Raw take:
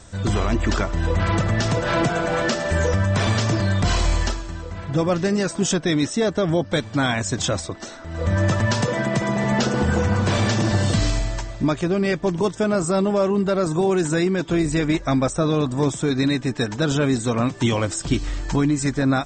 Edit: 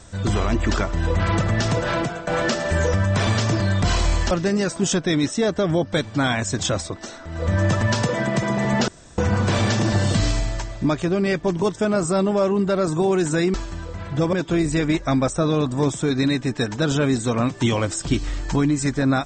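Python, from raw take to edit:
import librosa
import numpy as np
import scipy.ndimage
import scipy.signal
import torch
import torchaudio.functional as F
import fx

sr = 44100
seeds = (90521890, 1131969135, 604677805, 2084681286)

y = fx.edit(x, sr, fx.fade_out_to(start_s=1.83, length_s=0.44, floor_db=-14.5),
    fx.move(start_s=4.31, length_s=0.79, to_s=14.33),
    fx.room_tone_fill(start_s=9.67, length_s=0.3), tone=tone)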